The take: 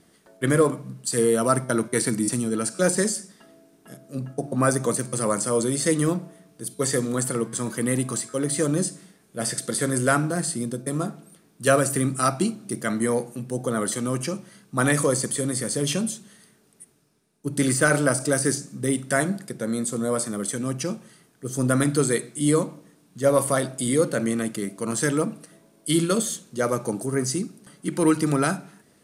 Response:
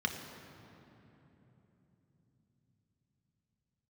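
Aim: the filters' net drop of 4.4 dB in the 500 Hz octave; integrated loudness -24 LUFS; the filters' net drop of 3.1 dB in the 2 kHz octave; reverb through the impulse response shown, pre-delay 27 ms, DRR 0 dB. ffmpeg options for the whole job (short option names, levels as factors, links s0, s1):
-filter_complex "[0:a]equalizer=f=500:t=o:g=-5,equalizer=f=2000:t=o:g=-4,asplit=2[s0][s1];[1:a]atrim=start_sample=2205,adelay=27[s2];[s1][s2]afir=irnorm=-1:irlink=0,volume=0.501[s3];[s0][s3]amix=inputs=2:normalize=0,volume=0.891"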